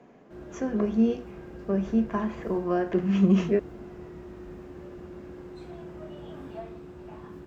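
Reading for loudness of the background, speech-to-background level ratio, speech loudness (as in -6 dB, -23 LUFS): -43.5 LUFS, 17.0 dB, -26.5 LUFS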